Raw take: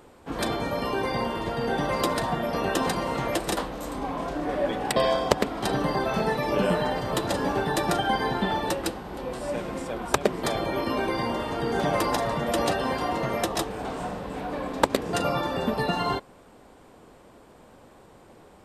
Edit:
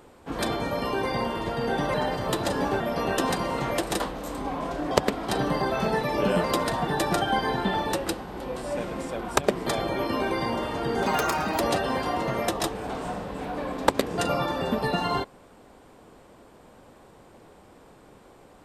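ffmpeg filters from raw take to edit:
-filter_complex "[0:a]asplit=8[s0][s1][s2][s3][s4][s5][s6][s7];[s0]atrim=end=1.942[s8];[s1]atrim=start=6.778:end=7.642[s9];[s2]atrim=start=2.368:end=4.482[s10];[s3]atrim=start=5.248:end=6.782[s11];[s4]atrim=start=1.938:end=2.372[s12];[s5]atrim=start=7.638:end=11.834[s13];[s6]atrim=start=11.83:end=12.55,asetpts=PTS-STARTPTS,asetrate=59094,aresample=44100[s14];[s7]atrim=start=12.546[s15];[s8][s9]acrossfade=d=0.004:c1=hsin:c2=hsin[s16];[s16][s10]acrossfade=d=0.004:c1=hsin:c2=hsin[s17];[s17][s11]acrossfade=d=0.004:c1=hsin:c2=hsin[s18];[s18][s12]acrossfade=d=0.004:c1=hsin:c2=hsin[s19];[s19][s13]acrossfade=d=0.004:c1=hsin:c2=hsin[s20];[s20][s14]acrossfade=d=0.004:c1=hsin:c2=hsin[s21];[s21][s15]acrossfade=d=0.004:c1=hsin:c2=hsin"

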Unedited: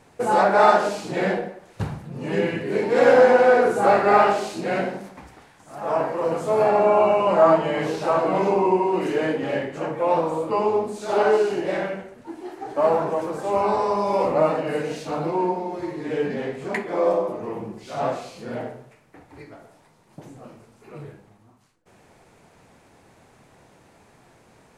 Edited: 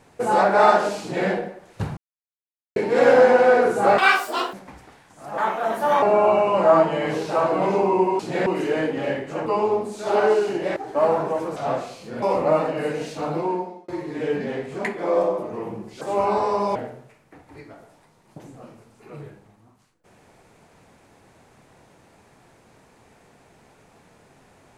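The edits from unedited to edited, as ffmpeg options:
-filter_complex "[0:a]asplit=16[s0][s1][s2][s3][s4][s5][s6][s7][s8][s9][s10][s11][s12][s13][s14][s15];[s0]atrim=end=1.97,asetpts=PTS-STARTPTS,afade=t=out:st=1.966:d=0.004:c=hsin[s16];[s1]atrim=start=1.97:end=2.76,asetpts=PTS-STARTPTS,volume=0[s17];[s2]atrim=start=2.76:end=3.984,asetpts=PTS-STARTPTS,afade=t=in:d=0.004:c=hsin[s18];[s3]atrim=start=3.98:end=5.03,asetpts=PTS-STARTPTS,asetrate=83349,aresample=44100[s19];[s4]atrim=start=5.026:end=5.874[s20];[s5]atrim=start=5.87:end=6.75,asetpts=PTS-STARTPTS,asetrate=59976,aresample=44100,atrim=end_sample=28535,asetpts=PTS-STARTPTS[s21];[s6]atrim=start=6.746:end=8.922[s22];[s7]atrim=start=1.008:end=1.282[s23];[s8]atrim=start=8.918:end=9.922[s24];[s9]atrim=start=10.488:end=11.792[s25];[s10]atrim=start=12.578:end=13.382[s26];[s11]atrim=start=17.908:end=18.572[s27];[s12]atrim=start=14.118:end=15.78,asetpts=PTS-STARTPTS,afade=t=out:st=1.202:d=0.46[s28];[s13]atrim=start=15.78:end=17.912,asetpts=PTS-STARTPTS,afade=t=in:d=0.004:c=hsin[s29];[s14]atrim=start=13.378:end=14.122[s30];[s15]atrim=start=18.568[s31];[s16][s17][s18]concat=n=3:v=0:a=1[s32];[s32][s19]acrossfade=d=0.004:c1=hsin:c2=hsin[s33];[s33][s20]acrossfade=d=0.004:c1=hsin:c2=hsin[s34];[s34][s21]acrossfade=d=0.004:c1=hsin:c2=hsin[s35];[s35][s22]acrossfade=d=0.004:c1=hsin:c2=hsin[s36];[s36][s23]acrossfade=d=0.004:c1=hsin:c2=hsin[s37];[s37][s24]acrossfade=d=0.004:c1=hsin:c2=hsin[s38];[s38][s25]acrossfade=d=0.004:c1=hsin:c2=hsin[s39];[s39][s26]acrossfade=d=0.004:c1=hsin:c2=hsin[s40];[s40][s27]acrossfade=d=0.004:c1=hsin:c2=hsin[s41];[s28][s29]concat=n=2:v=0:a=1[s42];[s41][s42]acrossfade=d=0.004:c1=hsin:c2=hsin[s43];[s43][s30]acrossfade=d=0.004:c1=hsin:c2=hsin[s44];[s44][s31]acrossfade=d=0.004:c1=hsin:c2=hsin"

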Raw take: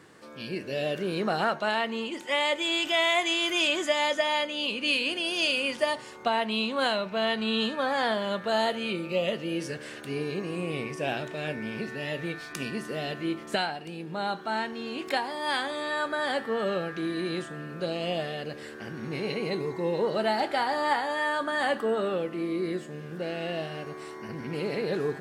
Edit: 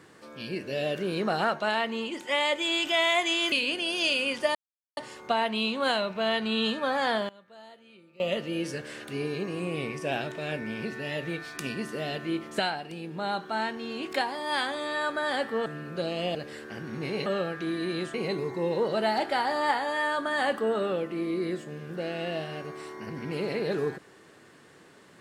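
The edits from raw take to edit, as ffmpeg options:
-filter_complex "[0:a]asplit=9[s0][s1][s2][s3][s4][s5][s6][s7][s8];[s0]atrim=end=3.522[s9];[s1]atrim=start=4.898:end=5.93,asetpts=PTS-STARTPTS,afade=t=out:st=1.028:d=0.004:c=hsin,apad=pad_dur=0.42[s10];[s2]atrim=start=5.93:end=8.25,asetpts=PTS-STARTPTS,afade=t=in:d=0.004:c=hsin,afade=t=out:st=2.11:d=0.21:c=log:silence=0.0668344[s11];[s3]atrim=start=8.25:end=9.16,asetpts=PTS-STARTPTS,volume=0.0668[s12];[s4]atrim=start=9.16:end=16.622,asetpts=PTS-STARTPTS,afade=t=in:d=0.21:c=log:silence=0.0668344[s13];[s5]atrim=start=17.498:end=18.192[s14];[s6]atrim=start=18.448:end=19.362[s15];[s7]atrim=start=16.618:end=17.502[s16];[s8]atrim=start=19.358[s17];[s10][s11][s12][s13]concat=n=4:v=0:a=1[s18];[s9][s18]acrossfade=d=0.004:c1=hsin:c2=hsin[s19];[s19][s14]acrossfade=d=0.004:c1=hsin:c2=hsin[s20];[s20][s15]acrossfade=d=0.004:c1=hsin:c2=hsin[s21];[s21][s16]acrossfade=d=0.004:c1=hsin:c2=hsin[s22];[s22][s17]acrossfade=d=0.004:c1=hsin:c2=hsin"

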